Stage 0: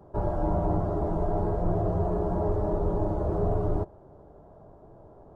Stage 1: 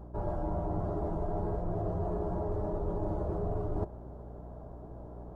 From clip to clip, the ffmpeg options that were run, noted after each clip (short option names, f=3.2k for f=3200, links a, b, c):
-af "areverse,acompressor=threshold=-32dB:ratio=6,areverse,aeval=exprs='val(0)+0.00398*(sin(2*PI*60*n/s)+sin(2*PI*2*60*n/s)/2+sin(2*PI*3*60*n/s)/3+sin(2*PI*4*60*n/s)/4+sin(2*PI*5*60*n/s)/5)':c=same,volume=2dB"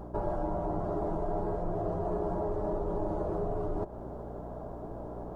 -af "acompressor=threshold=-34dB:ratio=6,equalizer=f=75:w=0.6:g=-9,volume=8.5dB"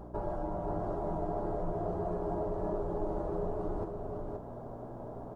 -af "aecho=1:1:525:0.596,volume=-3.5dB"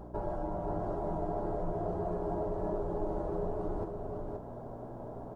-af "bandreject=f=1.2k:w=20"